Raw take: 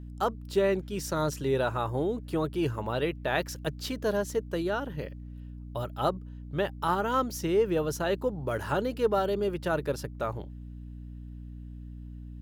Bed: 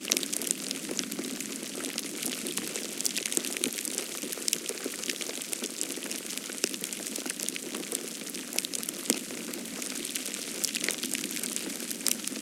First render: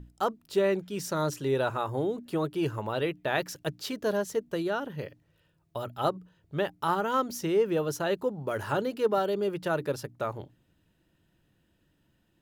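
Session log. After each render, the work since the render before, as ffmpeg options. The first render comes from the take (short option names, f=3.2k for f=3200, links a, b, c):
-af "bandreject=f=60:t=h:w=6,bandreject=f=120:t=h:w=6,bandreject=f=180:t=h:w=6,bandreject=f=240:t=h:w=6,bandreject=f=300:t=h:w=6"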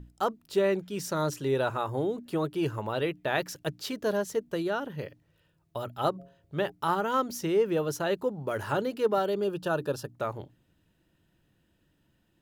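-filter_complex "[0:a]asplit=3[a][b][c];[a]afade=t=out:st=6.18:d=0.02[d];[b]bandreject=f=137.4:t=h:w=4,bandreject=f=274.8:t=h:w=4,bandreject=f=412.2:t=h:w=4,bandreject=f=549.6:t=h:w=4,bandreject=f=687:t=h:w=4,afade=t=in:st=6.18:d=0.02,afade=t=out:st=6.7:d=0.02[e];[c]afade=t=in:st=6.7:d=0.02[f];[d][e][f]amix=inputs=3:normalize=0,asettb=1/sr,asplit=3[g][h][i];[g]atrim=end=9.444[j];[h]atrim=start=9.44:end=10.13,asetpts=PTS-STARTPTS,afade=t=in:d=0.004:c=qsin,afade=t=out:st=0.686:d=0.004:c=qsin,asuperstop=centerf=2100:order=8:qfactor=3.4[k];[i]atrim=start=10.126[l];[j][k]acrossfade=d=0.004:c1=hsin:c2=qsin[m];[m][l]acrossfade=d=0.004:c1=qsin:c2=hsin"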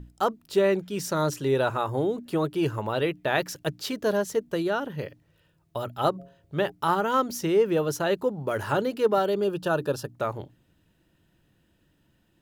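-af "volume=3.5dB"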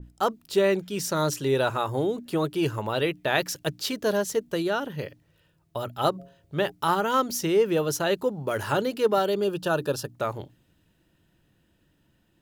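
-af "adynamicequalizer=threshold=0.0126:dfrequency=2300:dqfactor=0.7:tfrequency=2300:tqfactor=0.7:attack=5:release=100:ratio=0.375:range=2.5:mode=boostabove:tftype=highshelf"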